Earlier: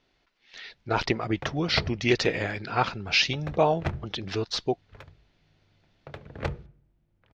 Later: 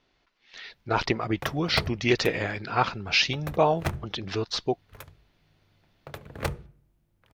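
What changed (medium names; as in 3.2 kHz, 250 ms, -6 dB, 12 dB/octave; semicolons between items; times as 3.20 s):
background: remove distance through air 160 m; master: add peaking EQ 1.1 kHz +3 dB 0.51 oct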